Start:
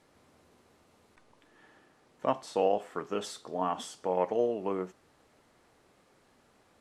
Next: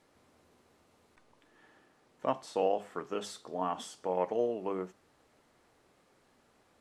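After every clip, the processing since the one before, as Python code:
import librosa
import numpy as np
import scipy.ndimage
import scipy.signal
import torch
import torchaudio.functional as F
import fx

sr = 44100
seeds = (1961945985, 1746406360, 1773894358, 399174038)

y = fx.hum_notches(x, sr, base_hz=50, count=4)
y = y * librosa.db_to_amplitude(-2.5)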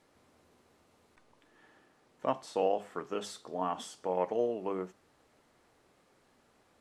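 y = x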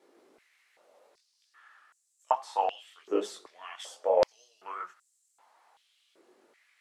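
y = fx.chorus_voices(x, sr, voices=4, hz=1.3, base_ms=20, depth_ms=3.2, mix_pct=45)
y = fx.vibrato(y, sr, rate_hz=5.9, depth_cents=39.0)
y = fx.filter_held_highpass(y, sr, hz=2.6, low_hz=360.0, high_hz=7500.0)
y = y * librosa.db_to_amplitude(3.0)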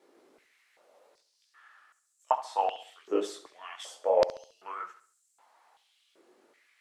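y = fx.echo_feedback(x, sr, ms=69, feedback_pct=39, wet_db=-14.5)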